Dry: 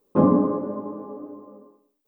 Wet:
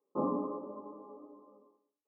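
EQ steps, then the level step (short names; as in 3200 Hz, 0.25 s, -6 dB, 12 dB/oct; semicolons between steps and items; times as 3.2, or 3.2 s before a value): HPF 650 Hz 6 dB/oct; rippled Chebyshev low-pass 1300 Hz, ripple 3 dB; -7.5 dB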